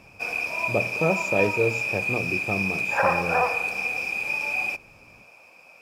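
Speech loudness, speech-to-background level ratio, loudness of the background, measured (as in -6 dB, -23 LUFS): -29.0 LUFS, -4.5 dB, -24.5 LUFS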